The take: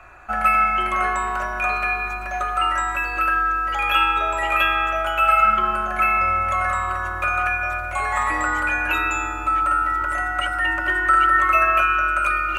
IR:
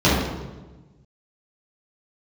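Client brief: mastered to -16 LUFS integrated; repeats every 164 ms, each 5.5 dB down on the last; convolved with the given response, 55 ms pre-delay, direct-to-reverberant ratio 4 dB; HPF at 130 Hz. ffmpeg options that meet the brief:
-filter_complex "[0:a]highpass=130,aecho=1:1:164|328|492|656|820|984|1148:0.531|0.281|0.149|0.079|0.0419|0.0222|0.0118,asplit=2[s0][s1];[1:a]atrim=start_sample=2205,adelay=55[s2];[s1][s2]afir=irnorm=-1:irlink=0,volume=0.0473[s3];[s0][s3]amix=inputs=2:normalize=0,volume=1.12"

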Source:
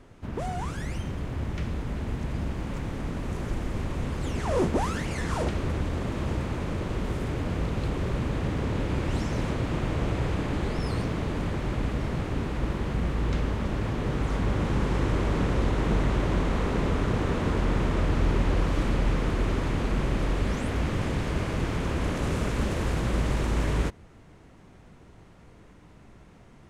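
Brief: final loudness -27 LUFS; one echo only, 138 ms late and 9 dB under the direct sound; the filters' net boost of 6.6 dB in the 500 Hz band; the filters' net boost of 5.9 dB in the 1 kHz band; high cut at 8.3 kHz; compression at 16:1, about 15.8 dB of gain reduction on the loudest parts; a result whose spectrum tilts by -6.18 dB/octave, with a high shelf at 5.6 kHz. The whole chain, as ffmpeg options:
-af "lowpass=8300,equalizer=f=500:t=o:g=7,equalizer=f=1000:t=o:g=5,highshelf=f=5600:g=5,acompressor=threshold=0.0282:ratio=16,aecho=1:1:138:0.355,volume=2.82"

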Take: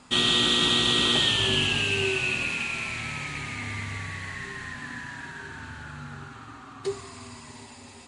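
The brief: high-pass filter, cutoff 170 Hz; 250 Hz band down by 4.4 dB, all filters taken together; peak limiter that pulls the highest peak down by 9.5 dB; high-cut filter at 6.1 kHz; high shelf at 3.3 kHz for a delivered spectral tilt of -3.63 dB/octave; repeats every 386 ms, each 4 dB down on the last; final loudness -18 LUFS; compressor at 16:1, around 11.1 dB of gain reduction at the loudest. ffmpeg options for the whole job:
-af "highpass=170,lowpass=6100,equalizer=f=250:t=o:g=-4.5,highshelf=f=3300:g=-8.5,acompressor=threshold=0.02:ratio=16,alimiter=level_in=2.51:limit=0.0631:level=0:latency=1,volume=0.398,aecho=1:1:386|772|1158|1544|1930|2316|2702|3088|3474:0.631|0.398|0.25|0.158|0.0994|0.0626|0.0394|0.0249|0.0157,volume=10"

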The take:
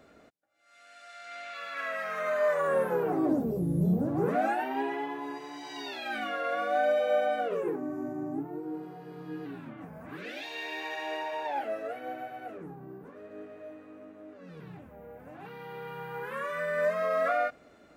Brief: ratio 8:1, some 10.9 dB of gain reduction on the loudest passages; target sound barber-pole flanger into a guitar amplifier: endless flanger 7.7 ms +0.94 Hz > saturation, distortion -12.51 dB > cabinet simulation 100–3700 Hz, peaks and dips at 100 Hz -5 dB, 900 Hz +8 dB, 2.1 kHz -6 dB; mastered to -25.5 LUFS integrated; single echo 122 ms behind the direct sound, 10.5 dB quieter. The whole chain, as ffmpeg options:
-filter_complex "[0:a]acompressor=threshold=0.02:ratio=8,aecho=1:1:122:0.299,asplit=2[s0][s1];[s1]adelay=7.7,afreqshift=0.94[s2];[s0][s2]amix=inputs=2:normalize=1,asoftclip=threshold=0.0112,highpass=100,equalizer=f=100:t=q:w=4:g=-5,equalizer=f=900:t=q:w=4:g=8,equalizer=f=2100:t=q:w=4:g=-6,lowpass=f=3700:w=0.5412,lowpass=f=3700:w=1.3066,volume=8.41"

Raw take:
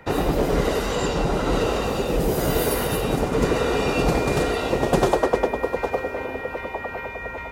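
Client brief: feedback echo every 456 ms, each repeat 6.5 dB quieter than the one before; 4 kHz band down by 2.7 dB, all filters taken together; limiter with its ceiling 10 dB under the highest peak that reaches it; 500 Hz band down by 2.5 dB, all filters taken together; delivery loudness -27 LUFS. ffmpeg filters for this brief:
-af "equalizer=f=500:t=o:g=-3,equalizer=f=4000:t=o:g=-3.5,alimiter=limit=0.15:level=0:latency=1,aecho=1:1:456|912|1368|1824|2280|2736:0.473|0.222|0.105|0.0491|0.0231|0.0109,volume=0.891"

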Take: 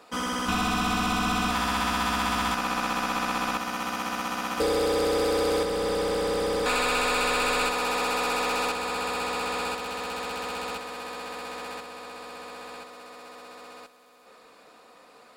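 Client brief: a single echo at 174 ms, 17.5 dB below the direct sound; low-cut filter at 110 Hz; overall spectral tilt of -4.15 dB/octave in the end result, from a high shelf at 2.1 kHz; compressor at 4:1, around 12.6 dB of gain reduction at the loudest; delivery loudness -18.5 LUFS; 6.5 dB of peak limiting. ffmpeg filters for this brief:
-af "highpass=110,highshelf=f=2100:g=-9,acompressor=threshold=0.0112:ratio=4,alimiter=level_in=2.82:limit=0.0631:level=0:latency=1,volume=0.355,aecho=1:1:174:0.133,volume=15"

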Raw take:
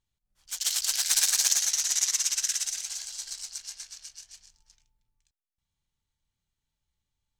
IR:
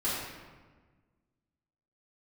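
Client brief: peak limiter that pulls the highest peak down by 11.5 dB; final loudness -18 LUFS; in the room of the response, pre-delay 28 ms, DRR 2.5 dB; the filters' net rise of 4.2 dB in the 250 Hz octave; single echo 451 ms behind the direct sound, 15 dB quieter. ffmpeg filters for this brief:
-filter_complex "[0:a]equalizer=f=250:t=o:g=6,alimiter=limit=0.15:level=0:latency=1,aecho=1:1:451:0.178,asplit=2[s0][s1];[1:a]atrim=start_sample=2205,adelay=28[s2];[s1][s2]afir=irnorm=-1:irlink=0,volume=0.282[s3];[s0][s3]amix=inputs=2:normalize=0,volume=2.99"

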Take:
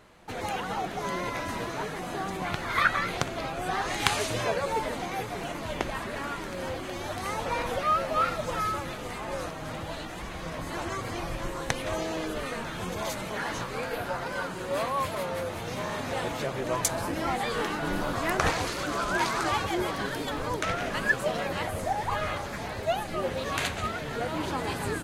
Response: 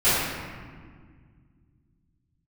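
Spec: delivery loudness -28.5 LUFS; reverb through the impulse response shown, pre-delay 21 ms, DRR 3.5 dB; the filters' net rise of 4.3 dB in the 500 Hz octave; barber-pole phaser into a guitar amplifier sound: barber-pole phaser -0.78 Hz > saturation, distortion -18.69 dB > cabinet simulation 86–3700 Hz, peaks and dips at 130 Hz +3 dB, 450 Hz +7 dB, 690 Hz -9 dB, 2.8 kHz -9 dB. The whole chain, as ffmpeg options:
-filter_complex "[0:a]equalizer=f=500:t=o:g=3.5,asplit=2[s0][s1];[1:a]atrim=start_sample=2205,adelay=21[s2];[s1][s2]afir=irnorm=-1:irlink=0,volume=0.075[s3];[s0][s3]amix=inputs=2:normalize=0,asplit=2[s4][s5];[s5]afreqshift=-0.78[s6];[s4][s6]amix=inputs=2:normalize=1,asoftclip=threshold=0.106,highpass=86,equalizer=f=130:t=q:w=4:g=3,equalizer=f=450:t=q:w=4:g=7,equalizer=f=690:t=q:w=4:g=-9,equalizer=f=2800:t=q:w=4:g=-9,lowpass=f=3700:w=0.5412,lowpass=f=3700:w=1.3066,volume=1.41"

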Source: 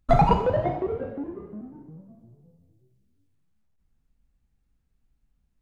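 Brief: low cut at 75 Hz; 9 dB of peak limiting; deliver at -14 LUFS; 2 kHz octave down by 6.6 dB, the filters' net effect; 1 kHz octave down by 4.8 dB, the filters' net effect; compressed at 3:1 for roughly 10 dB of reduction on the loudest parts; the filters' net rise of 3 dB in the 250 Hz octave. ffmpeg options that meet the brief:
-af "highpass=75,equalizer=f=250:t=o:g=5,equalizer=f=1000:t=o:g=-6,equalizer=f=2000:t=o:g=-6.5,acompressor=threshold=0.0355:ratio=3,volume=13.3,alimiter=limit=0.631:level=0:latency=1"

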